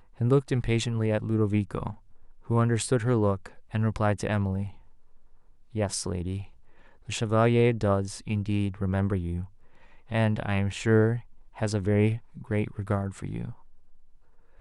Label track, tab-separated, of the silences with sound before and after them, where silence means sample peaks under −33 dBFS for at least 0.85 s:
4.680000	5.750000	silence